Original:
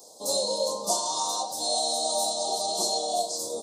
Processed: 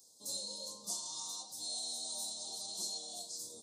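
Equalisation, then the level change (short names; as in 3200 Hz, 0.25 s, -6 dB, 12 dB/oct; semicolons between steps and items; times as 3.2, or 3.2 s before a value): passive tone stack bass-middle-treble 6-0-2; +3.5 dB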